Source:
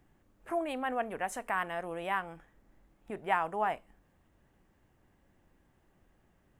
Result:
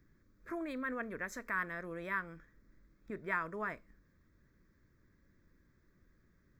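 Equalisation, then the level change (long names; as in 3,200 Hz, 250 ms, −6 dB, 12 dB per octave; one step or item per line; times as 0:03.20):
phaser with its sweep stopped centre 2,900 Hz, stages 6
0.0 dB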